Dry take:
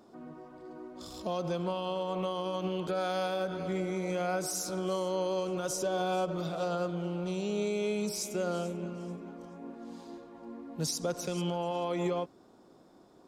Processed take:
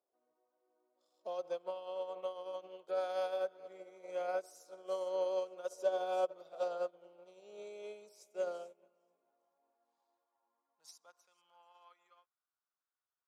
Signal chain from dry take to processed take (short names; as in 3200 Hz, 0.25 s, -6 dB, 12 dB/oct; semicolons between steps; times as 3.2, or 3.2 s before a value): high-pass sweep 530 Hz -> 1400 Hz, 8.54–12.51; upward expander 2.5:1, over -41 dBFS; gain -5 dB